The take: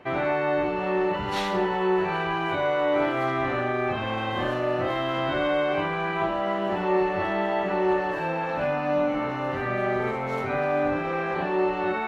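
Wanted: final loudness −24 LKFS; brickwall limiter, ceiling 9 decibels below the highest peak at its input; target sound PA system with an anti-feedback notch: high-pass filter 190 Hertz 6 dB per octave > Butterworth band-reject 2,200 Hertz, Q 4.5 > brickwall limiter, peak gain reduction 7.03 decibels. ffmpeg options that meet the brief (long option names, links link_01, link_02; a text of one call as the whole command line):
ffmpeg -i in.wav -af "alimiter=limit=-20.5dB:level=0:latency=1,highpass=frequency=190:poles=1,asuperstop=centerf=2200:order=8:qfactor=4.5,volume=10dB,alimiter=limit=-16dB:level=0:latency=1" out.wav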